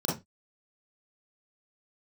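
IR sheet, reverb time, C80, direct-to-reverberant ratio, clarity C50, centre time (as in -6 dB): 0.20 s, 15.5 dB, -6.0 dB, 4.5 dB, 39 ms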